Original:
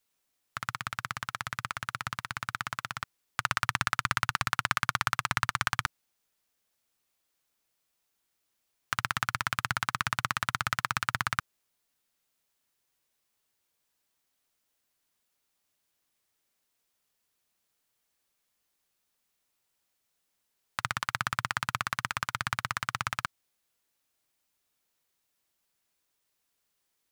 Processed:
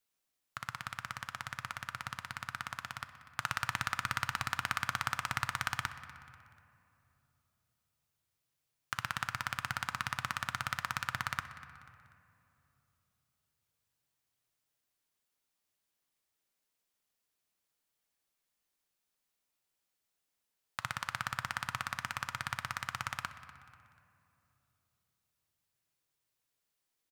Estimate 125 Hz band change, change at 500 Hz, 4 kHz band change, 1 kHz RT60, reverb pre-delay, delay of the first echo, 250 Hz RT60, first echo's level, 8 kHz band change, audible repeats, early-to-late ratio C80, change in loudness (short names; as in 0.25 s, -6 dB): -6.0 dB, -6.0 dB, -5.5 dB, 2.6 s, 6 ms, 0.244 s, 3.6 s, -17.5 dB, -6.0 dB, 3, 11.5 dB, -6.0 dB